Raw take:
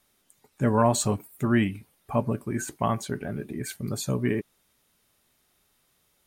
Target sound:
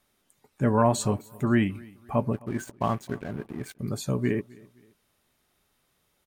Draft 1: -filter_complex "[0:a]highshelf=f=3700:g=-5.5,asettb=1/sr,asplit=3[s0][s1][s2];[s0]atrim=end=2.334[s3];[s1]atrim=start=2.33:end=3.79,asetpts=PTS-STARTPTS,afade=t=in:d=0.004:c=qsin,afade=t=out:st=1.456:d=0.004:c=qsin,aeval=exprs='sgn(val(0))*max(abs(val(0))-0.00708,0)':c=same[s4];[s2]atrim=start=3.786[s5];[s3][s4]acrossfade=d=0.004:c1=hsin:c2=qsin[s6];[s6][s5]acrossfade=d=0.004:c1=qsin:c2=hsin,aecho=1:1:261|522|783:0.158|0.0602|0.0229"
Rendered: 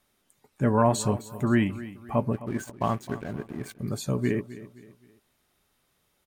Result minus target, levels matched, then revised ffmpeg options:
echo-to-direct +8 dB
-filter_complex "[0:a]highshelf=f=3700:g=-5.5,asettb=1/sr,asplit=3[s0][s1][s2];[s0]atrim=end=2.334[s3];[s1]atrim=start=2.33:end=3.79,asetpts=PTS-STARTPTS,afade=t=in:d=0.004:c=qsin,afade=t=out:st=1.456:d=0.004:c=qsin,aeval=exprs='sgn(val(0))*max(abs(val(0))-0.00708,0)':c=same[s4];[s2]atrim=start=3.786[s5];[s3][s4]acrossfade=d=0.004:c1=hsin:c2=qsin[s6];[s6][s5]acrossfade=d=0.004:c1=qsin:c2=hsin,aecho=1:1:261|522:0.0631|0.024"

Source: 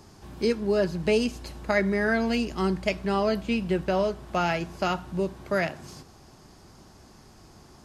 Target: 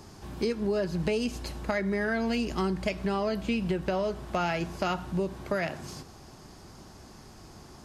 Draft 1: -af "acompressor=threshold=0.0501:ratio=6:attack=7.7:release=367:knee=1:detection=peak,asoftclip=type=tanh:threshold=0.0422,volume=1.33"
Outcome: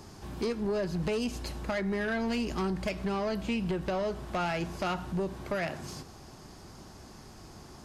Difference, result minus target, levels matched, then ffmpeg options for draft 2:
saturation: distortion +14 dB
-af "acompressor=threshold=0.0501:ratio=6:attack=7.7:release=367:knee=1:detection=peak,asoftclip=type=tanh:threshold=0.133,volume=1.33"

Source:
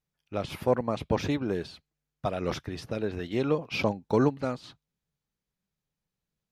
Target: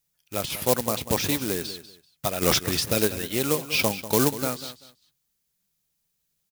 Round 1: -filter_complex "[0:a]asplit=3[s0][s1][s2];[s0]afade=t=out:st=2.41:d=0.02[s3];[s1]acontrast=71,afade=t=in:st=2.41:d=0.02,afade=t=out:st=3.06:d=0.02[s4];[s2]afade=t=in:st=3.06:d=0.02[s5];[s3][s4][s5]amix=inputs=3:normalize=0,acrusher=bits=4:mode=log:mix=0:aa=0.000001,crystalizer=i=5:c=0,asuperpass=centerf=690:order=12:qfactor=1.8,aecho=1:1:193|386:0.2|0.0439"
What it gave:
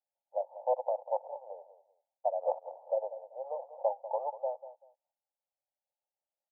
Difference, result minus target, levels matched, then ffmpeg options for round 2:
500 Hz band +5.5 dB
-filter_complex "[0:a]asplit=3[s0][s1][s2];[s0]afade=t=out:st=2.41:d=0.02[s3];[s1]acontrast=71,afade=t=in:st=2.41:d=0.02,afade=t=out:st=3.06:d=0.02[s4];[s2]afade=t=in:st=3.06:d=0.02[s5];[s3][s4][s5]amix=inputs=3:normalize=0,acrusher=bits=4:mode=log:mix=0:aa=0.000001,crystalizer=i=5:c=0,aecho=1:1:193|386:0.2|0.0439"

